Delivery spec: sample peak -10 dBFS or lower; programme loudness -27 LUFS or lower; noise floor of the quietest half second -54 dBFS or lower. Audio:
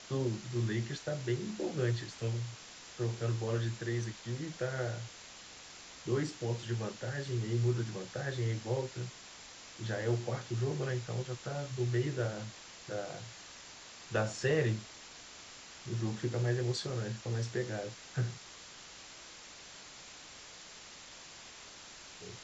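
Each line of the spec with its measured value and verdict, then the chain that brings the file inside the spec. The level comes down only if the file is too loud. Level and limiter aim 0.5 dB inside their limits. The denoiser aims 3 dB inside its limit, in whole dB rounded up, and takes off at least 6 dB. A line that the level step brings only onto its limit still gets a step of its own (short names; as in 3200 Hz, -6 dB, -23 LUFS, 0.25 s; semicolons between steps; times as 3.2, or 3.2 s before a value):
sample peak -19.0 dBFS: OK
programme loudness -36.5 LUFS: OK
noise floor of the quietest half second -52 dBFS: fail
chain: denoiser 6 dB, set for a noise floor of -52 dBFS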